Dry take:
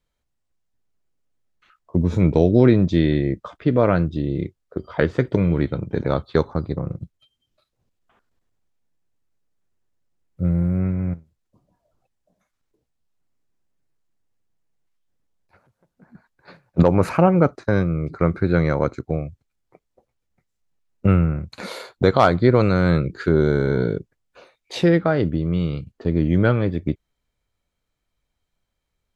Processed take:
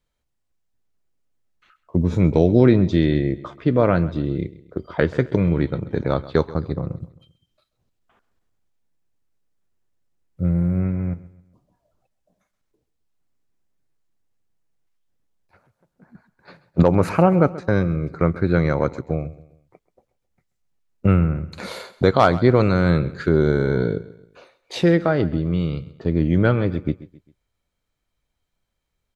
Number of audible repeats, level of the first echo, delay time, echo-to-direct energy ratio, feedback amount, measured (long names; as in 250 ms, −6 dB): 3, −18.0 dB, 133 ms, −17.0 dB, 40%